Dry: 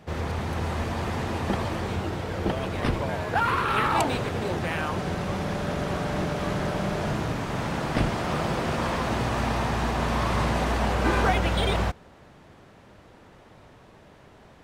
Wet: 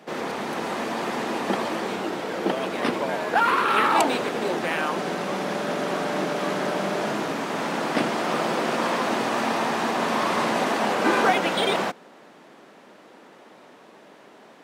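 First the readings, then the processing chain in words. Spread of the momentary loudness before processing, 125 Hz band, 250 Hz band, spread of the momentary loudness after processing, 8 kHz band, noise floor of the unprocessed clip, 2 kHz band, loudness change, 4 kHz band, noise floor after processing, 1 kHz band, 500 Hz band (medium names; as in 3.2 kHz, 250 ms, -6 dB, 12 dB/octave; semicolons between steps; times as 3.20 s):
6 LU, -11.0 dB, +1.5 dB, 8 LU, +4.0 dB, -52 dBFS, +4.0 dB, +2.5 dB, +4.0 dB, -50 dBFS, +4.0 dB, +4.0 dB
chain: high-pass 220 Hz 24 dB/octave; trim +4 dB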